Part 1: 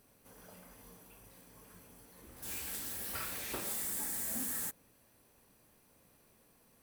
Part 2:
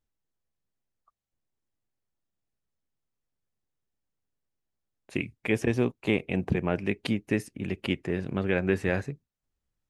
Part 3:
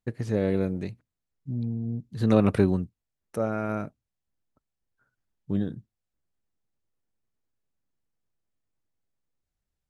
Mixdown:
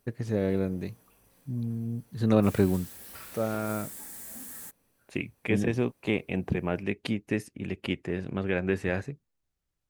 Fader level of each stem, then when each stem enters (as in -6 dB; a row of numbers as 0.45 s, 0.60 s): -5.0 dB, -2.0 dB, -2.0 dB; 0.00 s, 0.00 s, 0.00 s